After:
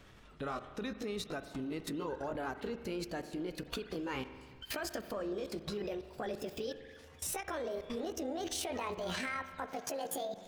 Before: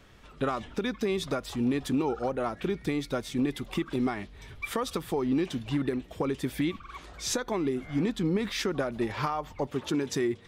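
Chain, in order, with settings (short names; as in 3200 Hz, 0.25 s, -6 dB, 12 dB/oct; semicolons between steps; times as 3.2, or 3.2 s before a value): gliding pitch shift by +11 st starting unshifted; level quantiser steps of 20 dB; on a send at -10.5 dB: reverb RT60 1.7 s, pre-delay 43 ms; on the sum: ending taper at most 290 dB/s; gain +2 dB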